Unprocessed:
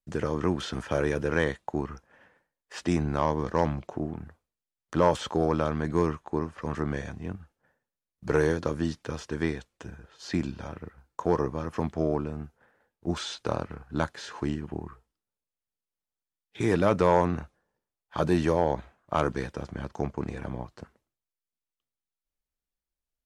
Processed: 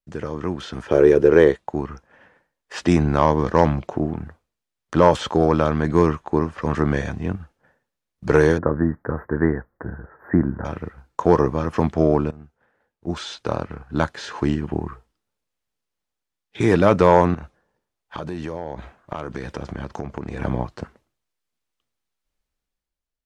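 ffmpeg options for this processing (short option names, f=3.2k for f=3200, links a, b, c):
-filter_complex "[0:a]asettb=1/sr,asplit=3[a][b][c];[a]atrim=end=0.884[d];[b]atrim=start=0.88:end=1.56,asetpts=PTS-STARTPTS,afade=t=in:d=0.004:c=qsin,afade=t=out:st=0.676:d=0.004:c=qsin,equalizer=f=400:t=o:w=0.77:g=15[e];[c]atrim=start=1.556[f];[d][e]acrossfade=d=0.004:c1=hsin:c2=qsin[g];[g][f]acrossfade=d=0.004:c1=qsin:c2=hsin,asettb=1/sr,asplit=3[h][i][j];[h]atrim=end=8.584[k];[i]atrim=start=8.58:end=10.65,asetpts=PTS-STARTPTS,afade=t=in:d=0.004:c=qsin,afade=t=out:st=2.066:d=0.004:c=qsin,asuperstop=centerf=5400:order=20:qfactor=0.51[l];[j]atrim=start=10.646[m];[k][l]acrossfade=d=0.004:c1=hsin:c2=qsin[n];[n][m]acrossfade=d=0.004:c1=qsin:c2=hsin,asettb=1/sr,asplit=3[o][p][q];[o]atrim=end=17.344[r];[p]atrim=start=17.34:end=20.4,asetpts=PTS-STARTPTS,afade=t=in:d=0.004:c=qsin,afade=t=out:st=3.056:d=0.004:c=qsin,acompressor=threshold=-36dB:ratio=10:attack=3.2:release=140:knee=1:detection=peak[s];[q]atrim=start=20.396[t];[r][s]acrossfade=d=0.004:c1=hsin:c2=qsin[u];[u][t]acrossfade=d=0.004:c1=qsin:c2=hsin,asplit=2[v][w];[v]atrim=end=12.31,asetpts=PTS-STARTPTS,afade=t=out:st=12.306:d=0.004:c=hsin:silence=0.141254[x];[w]atrim=start=12.31,asetpts=PTS-STARTPTS,afade=t=in:d=2.41:silence=0.141254[y];[x][y]concat=n=2:v=0:a=1,highshelf=f=8.8k:g=-10,dynaudnorm=f=190:g=9:m=11.5dB"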